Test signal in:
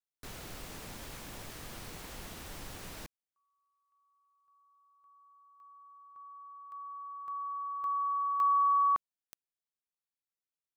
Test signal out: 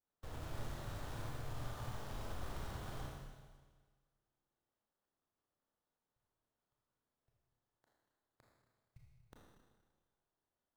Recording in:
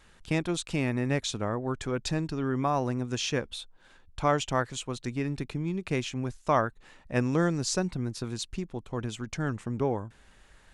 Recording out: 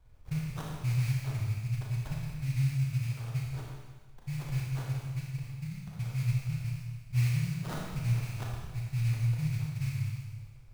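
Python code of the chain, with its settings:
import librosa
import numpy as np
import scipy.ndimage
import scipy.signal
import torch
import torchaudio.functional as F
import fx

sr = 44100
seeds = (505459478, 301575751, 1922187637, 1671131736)

y = fx.spec_dropout(x, sr, seeds[0], share_pct=33)
y = scipy.signal.sosfilt(scipy.signal.cheby1(4, 1.0, [140.0, 8400.0], 'bandstop', fs=sr, output='sos'), y)
y = fx.peak_eq(y, sr, hz=120.0, db=5.0, octaves=0.31)
y = fx.sample_hold(y, sr, seeds[1], rate_hz=2400.0, jitter_pct=20)
y = fx.rev_schroeder(y, sr, rt60_s=1.5, comb_ms=26, drr_db=-3.0)
y = F.gain(torch.from_numpy(y), 1.5).numpy()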